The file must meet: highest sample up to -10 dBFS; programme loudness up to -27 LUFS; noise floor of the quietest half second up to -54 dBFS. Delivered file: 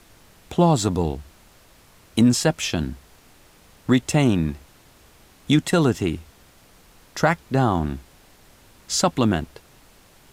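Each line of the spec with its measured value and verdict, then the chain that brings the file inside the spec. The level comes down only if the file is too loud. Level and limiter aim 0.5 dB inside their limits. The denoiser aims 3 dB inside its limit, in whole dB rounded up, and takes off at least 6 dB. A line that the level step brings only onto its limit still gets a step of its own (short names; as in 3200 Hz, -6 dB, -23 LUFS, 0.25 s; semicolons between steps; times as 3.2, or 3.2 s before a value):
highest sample -6.0 dBFS: fail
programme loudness -21.5 LUFS: fail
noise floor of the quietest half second -52 dBFS: fail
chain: gain -6 dB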